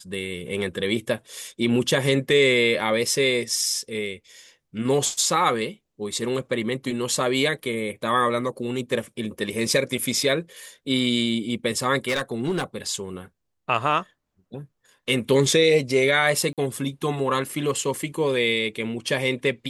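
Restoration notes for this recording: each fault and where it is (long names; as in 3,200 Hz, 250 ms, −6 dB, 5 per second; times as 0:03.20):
0:12.08–0:12.64: clipping −19.5 dBFS
0:16.53–0:16.58: drop-out 47 ms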